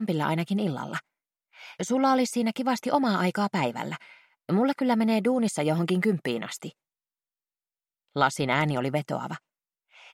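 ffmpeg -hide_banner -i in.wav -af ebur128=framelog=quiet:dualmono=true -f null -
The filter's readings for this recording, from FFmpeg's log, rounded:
Integrated loudness:
  I:         -23.5 LUFS
  Threshold: -34.2 LUFS
Loudness range:
  LRA:         3.9 LU
  Threshold: -44.5 LUFS
  LRA low:   -27.1 LUFS
  LRA high:  -23.2 LUFS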